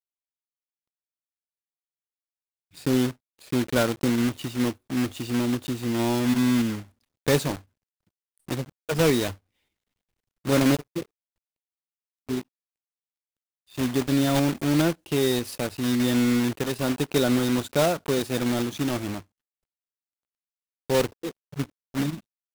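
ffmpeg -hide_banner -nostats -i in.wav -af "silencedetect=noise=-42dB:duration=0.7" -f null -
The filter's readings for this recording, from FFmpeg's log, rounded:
silence_start: 0.00
silence_end: 2.75 | silence_duration: 2.75
silence_start: 7.61
silence_end: 8.48 | silence_duration: 0.87
silence_start: 9.35
silence_end: 10.45 | silence_duration: 1.10
silence_start: 11.03
silence_end: 12.29 | silence_duration: 1.26
silence_start: 12.41
silence_end: 13.72 | silence_duration: 1.30
silence_start: 19.21
silence_end: 20.90 | silence_duration: 1.68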